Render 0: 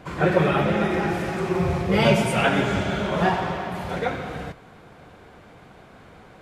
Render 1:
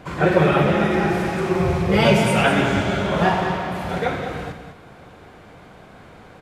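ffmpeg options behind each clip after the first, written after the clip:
ffmpeg -i in.wav -af "aecho=1:1:49.56|201.2:0.282|0.355,volume=2.5dB" out.wav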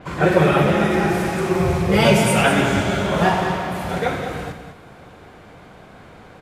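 ffmpeg -i in.wav -af "adynamicequalizer=threshold=0.00708:dfrequency=6200:dqfactor=0.7:tfrequency=6200:tqfactor=0.7:attack=5:release=100:ratio=0.375:range=4:mode=boostabove:tftype=highshelf,volume=1dB" out.wav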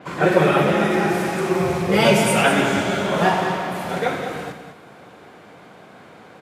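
ffmpeg -i in.wav -af "highpass=170" out.wav

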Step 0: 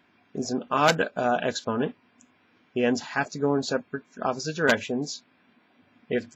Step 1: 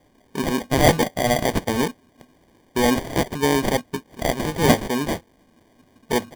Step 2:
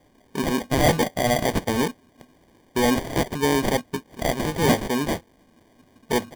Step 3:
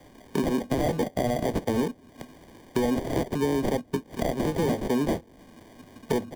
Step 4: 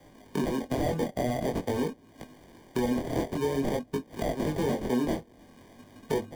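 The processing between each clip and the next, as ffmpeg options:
ffmpeg -i in.wav -af "aemphasis=mode=production:type=50fm,acrusher=samples=33:mix=1:aa=0.000001,volume=5dB" out.wav
ffmpeg -i in.wav -af "asoftclip=type=tanh:threshold=-11dB" out.wav
ffmpeg -i in.wav -filter_complex "[0:a]alimiter=limit=-18dB:level=0:latency=1:release=355,acrossover=split=250|660[link_01][link_02][link_03];[link_01]acompressor=threshold=-38dB:ratio=4[link_04];[link_02]acompressor=threshold=-32dB:ratio=4[link_05];[link_03]acompressor=threshold=-45dB:ratio=4[link_06];[link_04][link_05][link_06]amix=inputs=3:normalize=0,volume=7dB" out.wav
ffmpeg -i in.wav -af "flanger=delay=18.5:depth=6.4:speed=0.48" out.wav

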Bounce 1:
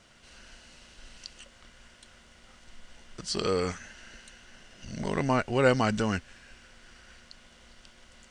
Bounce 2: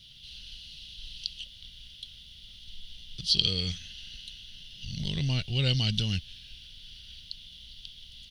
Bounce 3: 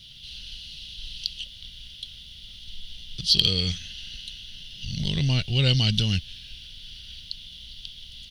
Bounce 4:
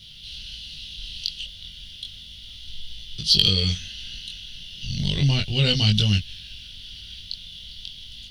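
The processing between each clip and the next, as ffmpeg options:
ffmpeg -i in.wav -af "firequalizer=gain_entry='entry(150,0);entry(230,-14);entry(400,-19);entry(1100,-29);entry(2200,-12);entry(3300,13);entry(7700,-18);entry(11000,6)':delay=0.05:min_phase=1,volume=5dB" out.wav
ffmpeg -i in.wav -af "asoftclip=type=tanh:threshold=-8.5dB,volume=5.5dB" out.wav
ffmpeg -i in.wav -af "flanger=delay=19.5:depth=3.4:speed=0.33,volume=5.5dB" out.wav

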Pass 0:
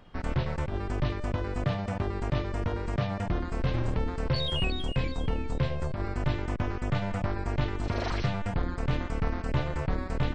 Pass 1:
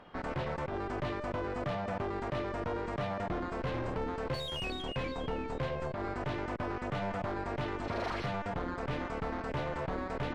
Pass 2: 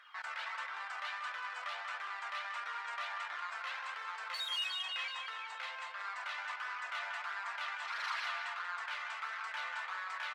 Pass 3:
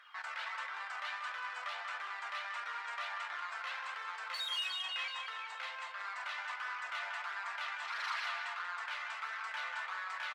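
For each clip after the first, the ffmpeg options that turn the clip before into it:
ffmpeg -i in.wav -filter_complex "[0:a]asplit=2[link_01][link_02];[link_02]highpass=frequency=720:poles=1,volume=24dB,asoftclip=type=tanh:threshold=-15dB[link_03];[link_01][link_03]amix=inputs=2:normalize=0,lowpass=frequency=1100:poles=1,volume=-6dB,volume=-9dB" out.wav
ffmpeg -i in.wav -filter_complex "[0:a]highpass=frequency=1200:width=0.5412,highpass=frequency=1200:width=1.3066,flanger=delay=0.5:depth=1.1:regen=-28:speed=1.5:shape=triangular,asplit=2[link_01][link_02];[link_02]adelay=186,lowpass=frequency=4200:poles=1,volume=-5dB,asplit=2[link_03][link_04];[link_04]adelay=186,lowpass=frequency=4200:poles=1,volume=0.54,asplit=2[link_05][link_06];[link_06]adelay=186,lowpass=frequency=4200:poles=1,volume=0.54,asplit=2[link_07][link_08];[link_08]adelay=186,lowpass=frequency=4200:poles=1,volume=0.54,asplit=2[link_09][link_10];[link_10]adelay=186,lowpass=frequency=4200:poles=1,volume=0.54,asplit=2[link_11][link_12];[link_12]adelay=186,lowpass=frequency=4200:poles=1,volume=0.54,asplit=2[link_13][link_14];[link_14]adelay=186,lowpass=frequency=4200:poles=1,volume=0.54[link_15];[link_01][link_03][link_05][link_07][link_09][link_11][link_13][link_15]amix=inputs=8:normalize=0,volume=6.5dB" out.wav
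ffmpeg -i in.wav -filter_complex "[0:a]asplit=2[link_01][link_02];[link_02]adelay=40,volume=-14dB[link_03];[link_01][link_03]amix=inputs=2:normalize=0" out.wav

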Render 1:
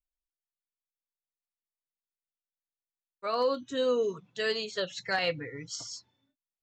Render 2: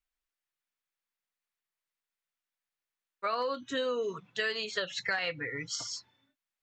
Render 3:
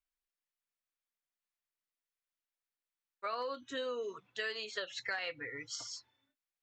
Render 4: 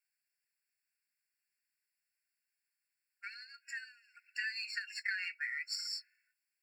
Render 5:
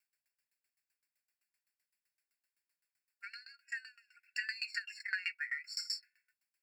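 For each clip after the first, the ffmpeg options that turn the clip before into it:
ffmpeg -i in.wav -af "equalizer=frequency=1800:width_type=o:width=2.2:gain=9.5,acompressor=threshold=-29dB:ratio=6" out.wav
ffmpeg -i in.wav -af "equalizer=frequency=170:width_type=o:width=0.46:gain=-15,volume=-6dB" out.wav
ffmpeg -i in.wav -af "aeval=exprs='if(lt(val(0),0),0.708*val(0),val(0))':channel_layout=same,acompressor=threshold=-41dB:ratio=6,afftfilt=real='re*eq(mod(floor(b*sr/1024/1400),2),1)':imag='im*eq(mod(floor(b*sr/1024/1400),2),1)':win_size=1024:overlap=0.75,volume=9dB" out.wav
ffmpeg -i in.wav -af "aeval=exprs='val(0)*pow(10,-22*if(lt(mod(7.8*n/s,1),2*abs(7.8)/1000),1-mod(7.8*n/s,1)/(2*abs(7.8)/1000),(mod(7.8*n/s,1)-2*abs(7.8)/1000)/(1-2*abs(7.8)/1000))/20)':channel_layout=same,volume=7dB" out.wav

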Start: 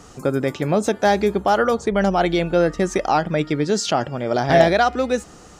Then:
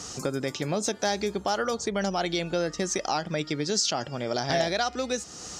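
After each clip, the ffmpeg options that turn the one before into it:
ffmpeg -i in.wav -af "highpass=58,equalizer=frequency=5500:width=0.85:gain=14.5,acompressor=threshold=-33dB:ratio=2" out.wav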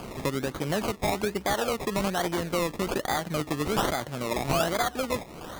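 ffmpeg -i in.wav -af "acrusher=samples=23:mix=1:aa=0.000001:lfo=1:lforange=13.8:lforate=1.2" out.wav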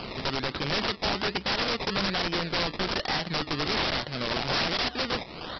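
ffmpeg -i in.wav -af "crystalizer=i=5.5:c=0,aresample=11025,aeval=exprs='(mod(11.2*val(0)+1,2)-1)/11.2':channel_layout=same,aresample=44100" out.wav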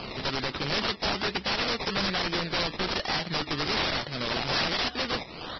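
ffmpeg -i in.wav -af "volume=-1dB" -ar 22050 -c:a libvorbis -b:a 16k out.ogg

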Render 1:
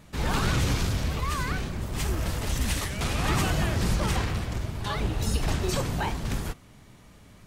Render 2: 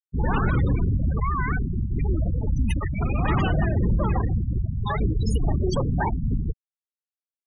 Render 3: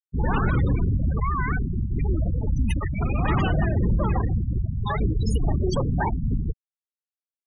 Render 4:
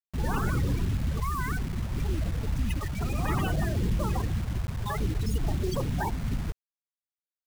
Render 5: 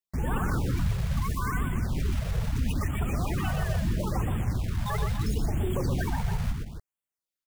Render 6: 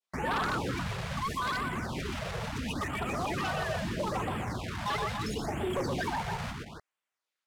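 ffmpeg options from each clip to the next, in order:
ffmpeg -i in.wav -filter_complex "[0:a]afftfilt=real='re*gte(hypot(re,im),0.0708)':imag='im*gte(hypot(re,im),0.0708)':win_size=1024:overlap=0.75,asplit=2[link_01][link_02];[link_02]alimiter=level_in=0.5dB:limit=-24dB:level=0:latency=1:release=54,volume=-0.5dB,volume=2dB[link_03];[link_01][link_03]amix=inputs=2:normalize=0" out.wav
ffmpeg -i in.wav -af anull out.wav
ffmpeg -i in.wav -af "acrusher=bits=5:mix=0:aa=0.000001,volume=-5.5dB" out.wav
ffmpeg -i in.wav -filter_complex "[0:a]alimiter=limit=-24dB:level=0:latency=1:release=17,asplit=2[link_01][link_02];[link_02]aecho=0:1:122.4|277:0.562|0.316[link_03];[link_01][link_03]amix=inputs=2:normalize=0,afftfilt=real='re*(1-between(b*sr/1024,250*pow(5200/250,0.5+0.5*sin(2*PI*0.75*pts/sr))/1.41,250*pow(5200/250,0.5+0.5*sin(2*PI*0.75*pts/sr))*1.41))':imag='im*(1-between(b*sr/1024,250*pow(5200/250,0.5+0.5*sin(2*PI*0.75*pts/sr))/1.41,250*pow(5200/250,0.5+0.5*sin(2*PI*0.75*pts/sr))*1.41))':win_size=1024:overlap=0.75,volume=2dB" out.wav
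ffmpeg -i in.wav -af "bandpass=frequency=1500:width_type=q:width=0.59:csg=0,aeval=exprs='0.0891*sin(PI/2*3.16*val(0)/0.0891)':channel_layout=same,adynamicequalizer=threshold=0.0112:dfrequency=1700:dqfactor=0.76:tfrequency=1700:tqfactor=0.76:attack=5:release=100:ratio=0.375:range=2.5:mode=cutabove:tftype=bell,volume=-4dB" out.wav

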